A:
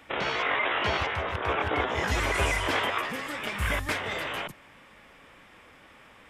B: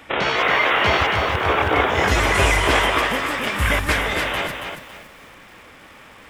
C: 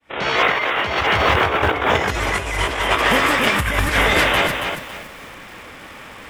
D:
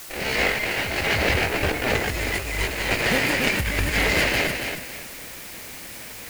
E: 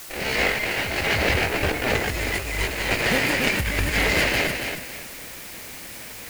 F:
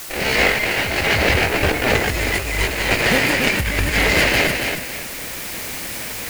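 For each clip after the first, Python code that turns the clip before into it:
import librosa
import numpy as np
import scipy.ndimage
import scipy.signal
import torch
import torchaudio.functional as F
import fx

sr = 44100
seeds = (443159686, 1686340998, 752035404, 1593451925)

y1 = fx.echo_crushed(x, sr, ms=278, feedback_pct=35, bits=9, wet_db=-5.5)
y1 = y1 * librosa.db_to_amplitude(8.5)
y2 = fx.fade_in_head(y1, sr, length_s=0.6)
y2 = fx.over_compress(y2, sr, threshold_db=-21.0, ratio=-0.5)
y2 = y2 * librosa.db_to_amplitude(4.0)
y3 = fx.lower_of_two(y2, sr, delay_ms=0.42)
y3 = fx.quant_dither(y3, sr, seeds[0], bits=6, dither='triangular')
y3 = y3 * librosa.db_to_amplitude(-3.5)
y4 = y3
y5 = fx.rider(y4, sr, range_db=5, speed_s=2.0)
y5 = y5 * librosa.db_to_amplitude(4.5)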